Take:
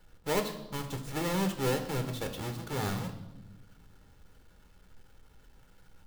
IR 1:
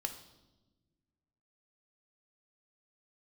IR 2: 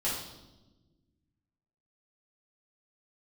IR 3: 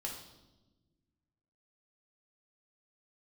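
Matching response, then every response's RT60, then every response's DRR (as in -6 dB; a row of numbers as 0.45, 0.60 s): 1; not exponential, 1.1 s, 1.1 s; 5.5, -8.5, -1.5 dB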